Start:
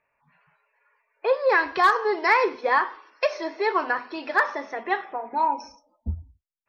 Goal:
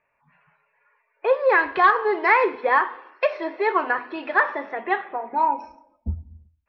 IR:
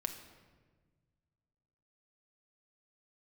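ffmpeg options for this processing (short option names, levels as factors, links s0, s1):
-filter_complex "[0:a]lowpass=f=3300:w=0.5412,lowpass=f=3300:w=1.3066,asplit=2[s0][s1];[1:a]atrim=start_sample=2205,afade=t=out:st=0.42:d=0.01,atrim=end_sample=18963[s2];[s1][s2]afir=irnorm=-1:irlink=0,volume=0.299[s3];[s0][s3]amix=inputs=2:normalize=0"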